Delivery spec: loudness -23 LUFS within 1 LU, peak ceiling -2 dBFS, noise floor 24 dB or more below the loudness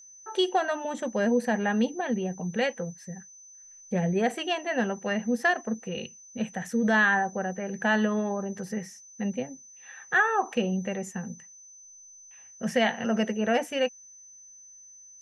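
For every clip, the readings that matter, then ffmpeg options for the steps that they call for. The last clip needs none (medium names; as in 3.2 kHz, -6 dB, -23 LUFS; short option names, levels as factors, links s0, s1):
steady tone 6.1 kHz; tone level -48 dBFS; loudness -28.0 LUFS; peak level -12.0 dBFS; loudness target -23.0 LUFS
-> -af "bandreject=f=6100:w=30"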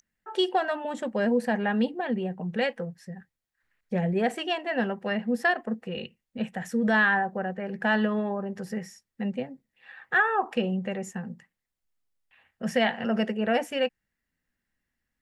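steady tone not found; loudness -28.0 LUFS; peak level -12.0 dBFS; loudness target -23.0 LUFS
-> -af "volume=1.78"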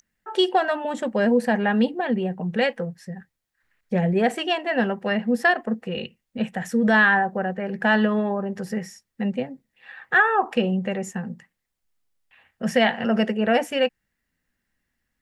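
loudness -23.0 LUFS; peak level -7.0 dBFS; noise floor -79 dBFS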